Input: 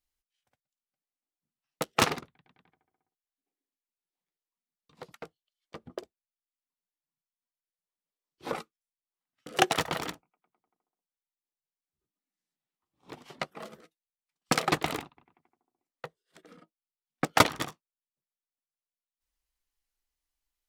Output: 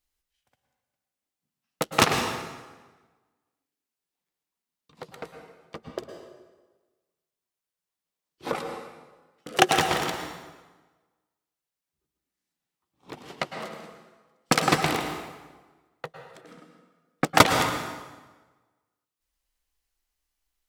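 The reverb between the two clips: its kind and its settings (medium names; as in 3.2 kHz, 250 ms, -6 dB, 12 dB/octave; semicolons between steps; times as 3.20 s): plate-style reverb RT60 1.3 s, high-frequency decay 0.8×, pre-delay 95 ms, DRR 5 dB; trim +4.5 dB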